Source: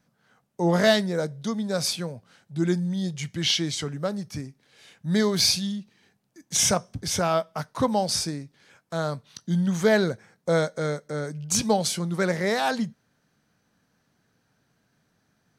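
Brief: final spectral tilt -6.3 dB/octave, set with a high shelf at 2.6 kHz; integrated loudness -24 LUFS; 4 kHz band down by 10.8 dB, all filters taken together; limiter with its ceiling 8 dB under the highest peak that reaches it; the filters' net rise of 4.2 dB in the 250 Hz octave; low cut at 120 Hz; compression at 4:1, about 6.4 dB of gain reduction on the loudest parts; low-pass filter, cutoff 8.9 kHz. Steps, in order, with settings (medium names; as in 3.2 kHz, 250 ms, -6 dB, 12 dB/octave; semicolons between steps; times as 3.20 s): high-pass 120 Hz; low-pass 8.9 kHz; peaking EQ 250 Hz +7 dB; treble shelf 2.6 kHz -8.5 dB; peaking EQ 4 kHz -6 dB; compression 4:1, threshold -21 dBFS; trim +5 dB; peak limiter -13.5 dBFS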